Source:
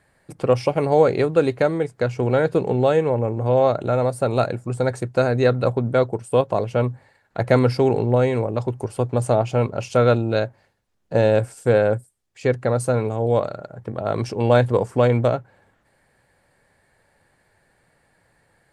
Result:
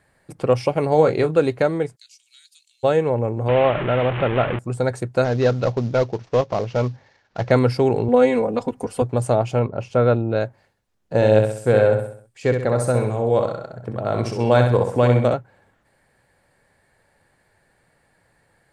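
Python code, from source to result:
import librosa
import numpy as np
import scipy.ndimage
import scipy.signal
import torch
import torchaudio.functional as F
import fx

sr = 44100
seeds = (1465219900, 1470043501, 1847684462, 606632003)

y = fx.doubler(x, sr, ms=26.0, db=-10.0, at=(0.92, 1.4))
y = fx.cheby2_highpass(y, sr, hz=710.0, order=4, stop_db=80, at=(1.95, 2.83), fade=0.02)
y = fx.delta_mod(y, sr, bps=16000, step_db=-18.5, at=(3.48, 4.59))
y = fx.cvsd(y, sr, bps=32000, at=(5.24, 7.51))
y = fx.comb(y, sr, ms=4.1, depth=0.97, at=(8.08, 9.02))
y = fx.lowpass(y, sr, hz=1500.0, slope=6, at=(9.59, 10.4))
y = fx.echo_feedback(y, sr, ms=65, feedback_pct=44, wet_db=-6, at=(11.15, 15.34))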